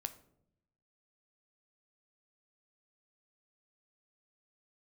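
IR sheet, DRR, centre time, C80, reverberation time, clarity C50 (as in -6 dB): 9.0 dB, 6 ms, 17.5 dB, 0.75 s, 14.5 dB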